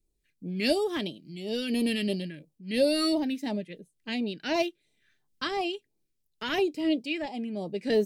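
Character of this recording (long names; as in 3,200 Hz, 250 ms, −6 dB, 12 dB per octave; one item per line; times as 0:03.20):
phaser sweep stages 2, 2.9 Hz, lowest notch 750–1,600 Hz
amplitude modulation by smooth noise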